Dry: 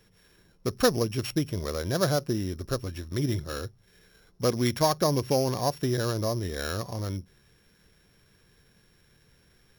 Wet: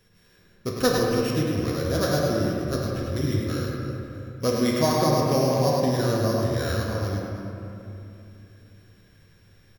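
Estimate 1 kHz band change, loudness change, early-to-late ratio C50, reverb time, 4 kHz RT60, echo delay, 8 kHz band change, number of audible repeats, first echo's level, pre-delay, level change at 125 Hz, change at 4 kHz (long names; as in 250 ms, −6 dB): +4.0 dB, +4.0 dB, −2.0 dB, 2.9 s, 1.6 s, 102 ms, +1.5 dB, 1, −5.0 dB, 8 ms, +4.5 dB, +2.0 dB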